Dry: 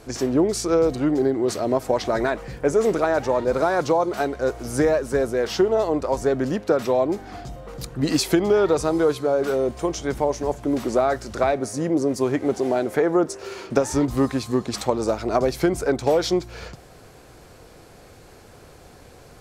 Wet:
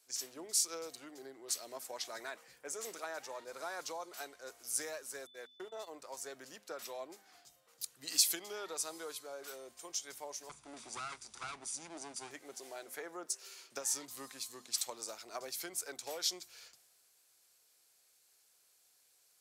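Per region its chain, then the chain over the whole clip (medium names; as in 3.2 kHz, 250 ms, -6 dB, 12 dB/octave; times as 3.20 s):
5.25–5.86 s: gate -23 dBFS, range -43 dB + whistle 3.5 kHz -46 dBFS
10.49–12.31 s: comb filter that takes the minimum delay 0.84 ms + elliptic low-pass 10 kHz + bass shelf 420 Hz +9 dB
whole clip: differentiator; hum notches 50/100/150/200/250 Hz; three bands expanded up and down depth 40%; trim -4 dB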